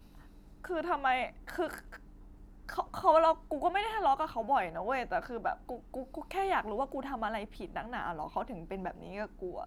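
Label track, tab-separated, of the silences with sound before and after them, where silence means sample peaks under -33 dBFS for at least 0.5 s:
1.780000	2.690000	silence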